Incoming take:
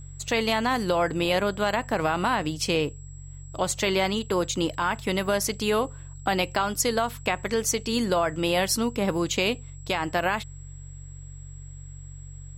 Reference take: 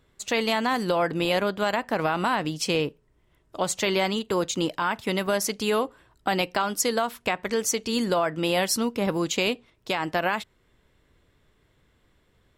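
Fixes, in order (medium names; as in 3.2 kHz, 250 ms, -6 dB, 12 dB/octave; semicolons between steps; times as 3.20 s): de-hum 46.3 Hz, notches 3; band-stop 7.7 kHz, Q 30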